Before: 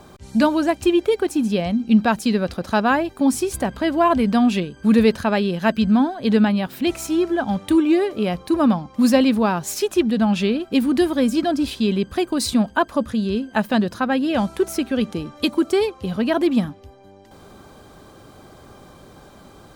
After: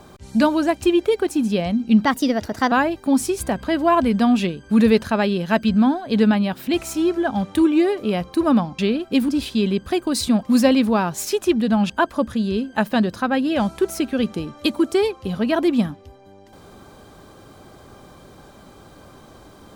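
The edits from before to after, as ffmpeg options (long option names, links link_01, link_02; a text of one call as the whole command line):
ffmpeg -i in.wav -filter_complex "[0:a]asplit=7[link_01][link_02][link_03][link_04][link_05][link_06][link_07];[link_01]atrim=end=2.054[link_08];[link_02]atrim=start=2.05:end=2.85,asetpts=PTS-STARTPTS,asetrate=52920,aresample=44100[link_09];[link_03]atrim=start=2.846:end=8.922[link_10];[link_04]atrim=start=10.388:end=10.892[link_11];[link_05]atrim=start=11.538:end=12.682[link_12];[link_06]atrim=start=8.918:end=10.392[link_13];[link_07]atrim=start=12.678[link_14];[link_08][link_09]acrossfade=duration=0.004:curve1=hsin:curve2=hsin[link_15];[link_15][link_10]acrossfade=duration=0.004:curve1=hsin:curve2=hsin[link_16];[link_16][link_11]acrossfade=duration=0.004:curve1=hsin:curve2=hsin[link_17];[link_17][link_12]acrossfade=duration=0.004:curve1=hsin:curve2=hsin[link_18];[link_18][link_13]acrossfade=duration=0.004:curve1=hsin:curve2=hsin[link_19];[link_19][link_14]acrossfade=duration=0.004:curve1=hsin:curve2=hsin" out.wav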